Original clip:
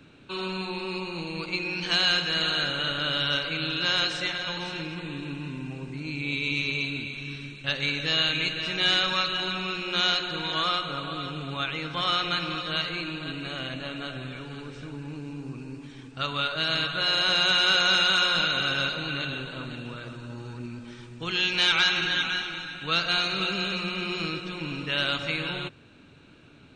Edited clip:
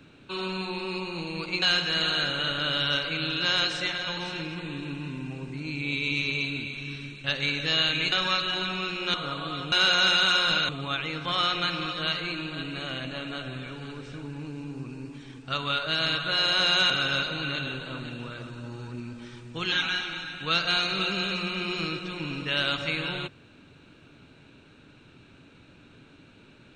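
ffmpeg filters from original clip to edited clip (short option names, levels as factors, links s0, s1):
-filter_complex "[0:a]asplit=8[s0][s1][s2][s3][s4][s5][s6][s7];[s0]atrim=end=1.622[s8];[s1]atrim=start=2.018:end=8.522[s9];[s2]atrim=start=8.978:end=10.002[s10];[s3]atrim=start=10.798:end=11.382[s11];[s4]atrim=start=17.588:end=18.562[s12];[s5]atrim=start=11.378:end=17.592[s13];[s6]atrim=start=18.558:end=21.382[s14];[s7]atrim=start=22.128[s15];[s8][s9]acrossfade=d=0.004:c1=hsin:c2=hsin[s16];[s16][s10]acrossfade=d=0.004:c1=hsin:c2=hsin[s17];[s17][s11]acrossfade=d=0.004:c1=hsin:c2=hsin[s18];[s18][s12]acrossfade=d=0.004:c1=hsin:c2=hsin[s19];[s19][s13]acrossfade=d=0.004:c1=hsin:c2=hsin[s20];[s20][s14]acrossfade=d=0.004:c1=hsin:c2=hsin[s21];[s21][s15]acrossfade=d=0.004:c1=hsin:c2=hsin"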